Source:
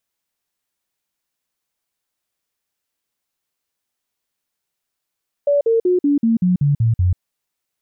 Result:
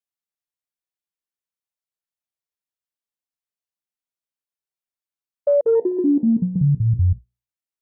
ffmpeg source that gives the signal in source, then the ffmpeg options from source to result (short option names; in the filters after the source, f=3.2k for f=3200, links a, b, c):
-f lavfi -i "aevalsrc='0.251*clip(min(mod(t,0.19),0.14-mod(t,0.19))/0.005,0,1)*sin(2*PI*574*pow(2,-floor(t/0.19)/3)*mod(t,0.19))':d=1.71:s=44100"
-af "bandreject=f=60:t=h:w=6,bandreject=f=120:t=h:w=6,bandreject=f=180:t=h:w=6,bandreject=f=240:t=h:w=6,bandreject=f=300:t=h:w=6,bandreject=f=360:t=h:w=6,bandreject=f=420:t=h:w=6,bandreject=f=480:t=h:w=6,afwtdn=0.0398"